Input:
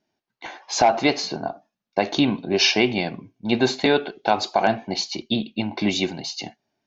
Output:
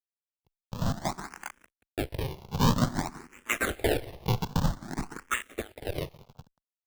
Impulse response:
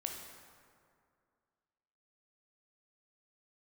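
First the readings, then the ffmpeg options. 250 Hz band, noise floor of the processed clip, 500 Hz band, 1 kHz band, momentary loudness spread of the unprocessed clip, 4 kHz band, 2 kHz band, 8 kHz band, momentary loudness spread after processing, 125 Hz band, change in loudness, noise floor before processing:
−10.0 dB, below −85 dBFS, −12.0 dB, −11.0 dB, 15 LU, −15.0 dB, −8.5 dB, can't be measured, 14 LU, +2.5 dB, −9.5 dB, −83 dBFS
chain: -filter_complex "[0:a]asoftclip=type=tanh:threshold=-12.5dB,lowpass=6800,aeval=exprs='0.251*(cos(1*acos(clip(val(0)/0.251,-1,1)))-cos(1*PI/2))+0.0251*(cos(2*acos(clip(val(0)/0.251,-1,1)))-cos(2*PI/2))+0.0158*(cos(3*acos(clip(val(0)/0.251,-1,1)))-cos(3*PI/2))+0.0282*(cos(7*acos(clip(val(0)/0.251,-1,1)))-cos(7*PI/2))':channel_layout=same,dynaudnorm=framelen=200:gausssize=17:maxgain=5dB,highpass=frequency=830:width=0.5412,highpass=frequency=830:width=1.3066,acontrast=87,agate=range=-33dB:threshold=-47dB:ratio=3:detection=peak,asplit=5[link_01][link_02][link_03][link_04][link_05];[link_02]adelay=181,afreqshift=35,volume=-17dB[link_06];[link_03]adelay=362,afreqshift=70,volume=-23.7dB[link_07];[link_04]adelay=543,afreqshift=105,volume=-30.5dB[link_08];[link_05]adelay=724,afreqshift=140,volume=-37.2dB[link_09];[link_01][link_06][link_07][link_08][link_09]amix=inputs=5:normalize=0,acrusher=samples=40:mix=1:aa=0.000001:lfo=1:lforange=64:lforate=0.51,asplit=2[link_10][link_11];[1:a]atrim=start_sample=2205[link_12];[link_11][link_12]afir=irnorm=-1:irlink=0,volume=-10.5dB[link_13];[link_10][link_13]amix=inputs=2:normalize=0,aeval=exprs='sgn(val(0))*max(abs(val(0))-0.015,0)':channel_layout=same,asplit=2[link_14][link_15];[link_15]afreqshift=0.53[link_16];[link_14][link_16]amix=inputs=2:normalize=1,volume=-8dB"

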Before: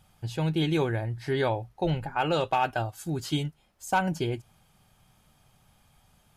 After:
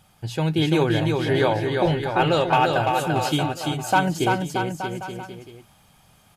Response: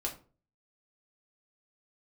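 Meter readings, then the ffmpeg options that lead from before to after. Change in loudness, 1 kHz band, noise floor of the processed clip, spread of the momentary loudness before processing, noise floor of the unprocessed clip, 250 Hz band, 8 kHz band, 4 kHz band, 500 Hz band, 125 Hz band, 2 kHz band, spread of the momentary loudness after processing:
+7.0 dB, +8.0 dB, −57 dBFS, 8 LU, −65 dBFS, +7.5 dB, +8.0 dB, +8.0 dB, +8.0 dB, +6.0 dB, +8.0 dB, 12 LU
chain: -af "lowshelf=frequency=70:gain=-10.5,aecho=1:1:340|629|874.6|1083|1261:0.631|0.398|0.251|0.158|0.1,volume=6dB"

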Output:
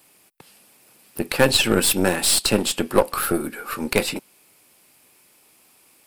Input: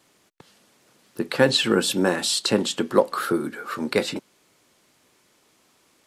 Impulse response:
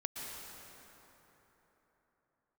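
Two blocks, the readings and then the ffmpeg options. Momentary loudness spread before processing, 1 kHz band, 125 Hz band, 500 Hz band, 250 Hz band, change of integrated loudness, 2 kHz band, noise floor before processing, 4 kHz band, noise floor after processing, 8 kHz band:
12 LU, +2.0 dB, +3.0 dB, +0.5 dB, +0.5 dB, +2.5 dB, +2.5 dB, −63 dBFS, +2.0 dB, −57 dBFS, +7.5 dB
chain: -af "aexciter=amount=5.1:drive=4.6:freq=8500,equalizer=frequency=800:width_type=o:width=0.33:gain=4,equalizer=frequency=2500:width_type=o:width=0.33:gain=8,equalizer=frequency=5000:width_type=o:width=0.33:gain=5,aeval=exprs='0.891*(cos(1*acos(clip(val(0)/0.891,-1,1)))-cos(1*PI/2))+0.0708*(cos(8*acos(clip(val(0)/0.891,-1,1)))-cos(8*PI/2))':channel_layout=same"

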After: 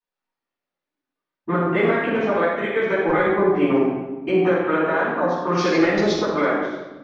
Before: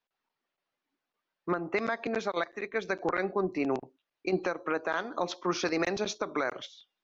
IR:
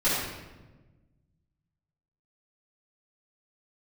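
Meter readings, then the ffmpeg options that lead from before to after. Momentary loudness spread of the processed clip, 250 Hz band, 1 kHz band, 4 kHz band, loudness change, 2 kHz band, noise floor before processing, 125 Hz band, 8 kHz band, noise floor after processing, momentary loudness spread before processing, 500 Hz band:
5 LU, +13.0 dB, +10.5 dB, +7.0 dB, +11.5 dB, +10.0 dB, below −85 dBFS, +14.5 dB, can't be measured, below −85 dBFS, 5 LU, +12.5 dB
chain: -filter_complex "[0:a]afwtdn=0.0126,asplit=2[link_01][link_02];[link_02]acompressor=threshold=-37dB:ratio=6,volume=1.5dB[link_03];[link_01][link_03]amix=inputs=2:normalize=0[link_04];[1:a]atrim=start_sample=2205[link_05];[link_04][link_05]afir=irnorm=-1:irlink=0,volume=-5.5dB"

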